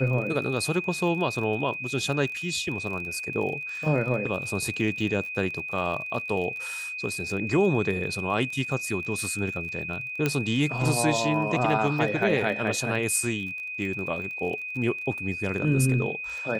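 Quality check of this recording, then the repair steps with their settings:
surface crackle 31 per second −34 dBFS
whistle 2,500 Hz −32 dBFS
0:10.26: click −10 dBFS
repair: click removal
notch filter 2,500 Hz, Q 30

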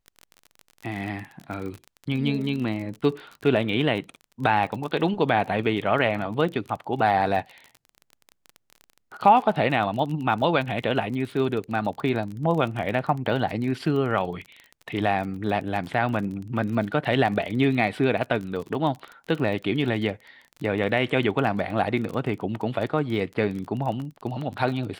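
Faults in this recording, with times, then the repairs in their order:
surface crackle 32 per second −31 dBFS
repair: click removal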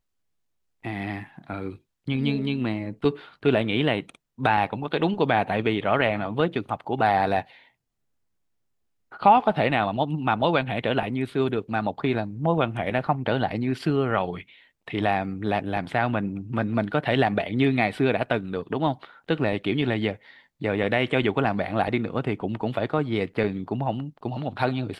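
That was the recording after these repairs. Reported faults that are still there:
none of them is left

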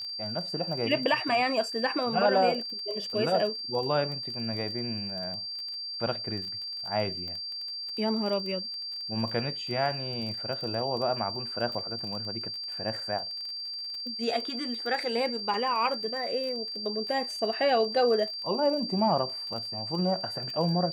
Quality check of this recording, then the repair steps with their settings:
surface crackle 25 per second −35 dBFS
whistle 4,700 Hz −34 dBFS
0:07.28: click −28 dBFS
0:15.54: drop-out 2.4 ms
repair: click removal
notch filter 4,700 Hz, Q 30
repair the gap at 0:15.54, 2.4 ms

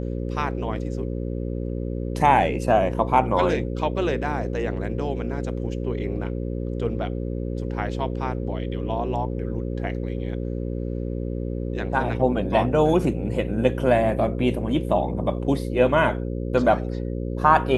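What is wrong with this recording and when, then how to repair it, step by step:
mains buzz 60 Hz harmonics 9 −28 dBFS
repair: hum removal 60 Hz, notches 9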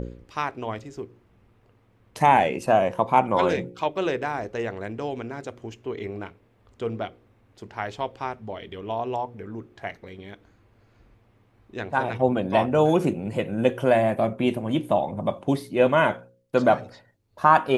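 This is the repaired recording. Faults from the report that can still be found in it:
none of them is left

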